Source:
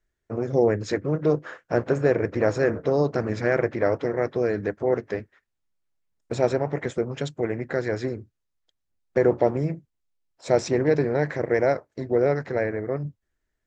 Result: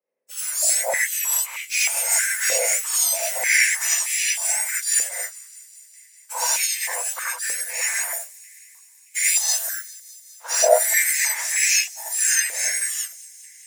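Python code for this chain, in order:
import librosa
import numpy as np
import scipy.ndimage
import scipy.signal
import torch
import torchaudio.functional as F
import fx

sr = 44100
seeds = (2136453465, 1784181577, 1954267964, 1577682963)

y = fx.octave_mirror(x, sr, pivot_hz=1900.0)
y = fx.leveller(y, sr, passes=2)
y = fx.echo_wet_highpass(y, sr, ms=203, feedback_pct=75, hz=3300.0, wet_db=-20.0)
y = fx.rev_gated(y, sr, seeds[0], gate_ms=110, shape='rising', drr_db=-5.5)
y = fx.filter_held_highpass(y, sr, hz=3.2, low_hz=500.0, high_hz=2400.0)
y = F.gain(torch.from_numpy(y), -5.5).numpy()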